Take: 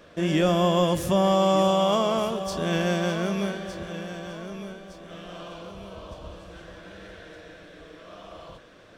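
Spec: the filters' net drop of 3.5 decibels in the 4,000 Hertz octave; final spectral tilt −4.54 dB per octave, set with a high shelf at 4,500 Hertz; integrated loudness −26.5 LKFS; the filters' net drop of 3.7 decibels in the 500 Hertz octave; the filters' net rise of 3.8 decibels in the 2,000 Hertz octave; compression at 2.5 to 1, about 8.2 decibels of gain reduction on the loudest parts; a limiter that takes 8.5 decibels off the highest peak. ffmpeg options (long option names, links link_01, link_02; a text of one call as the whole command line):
ffmpeg -i in.wav -af "equalizer=frequency=500:width_type=o:gain=-5,equalizer=frequency=2000:width_type=o:gain=8,equalizer=frequency=4000:width_type=o:gain=-5.5,highshelf=frequency=4500:gain=-6,acompressor=threshold=-31dB:ratio=2.5,volume=12dB,alimiter=limit=-15dB:level=0:latency=1" out.wav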